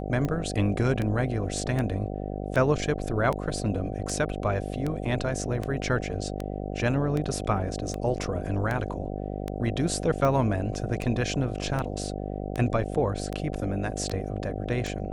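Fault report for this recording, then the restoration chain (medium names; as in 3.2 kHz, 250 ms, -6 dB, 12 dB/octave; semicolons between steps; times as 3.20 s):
buzz 50 Hz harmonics 15 -33 dBFS
tick 78 rpm -17 dBFS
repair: de-click; de-hum 50 Hz, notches 15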